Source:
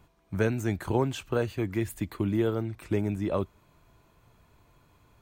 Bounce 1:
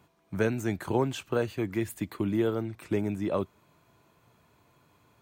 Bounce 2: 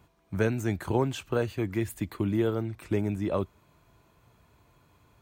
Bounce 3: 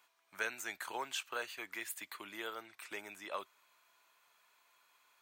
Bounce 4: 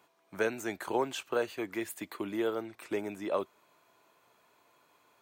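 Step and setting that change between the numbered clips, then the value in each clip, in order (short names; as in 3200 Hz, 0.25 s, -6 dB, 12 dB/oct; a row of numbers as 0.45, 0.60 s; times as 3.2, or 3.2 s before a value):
HPF, cutoff: 120, 47, 1300, 430 Hz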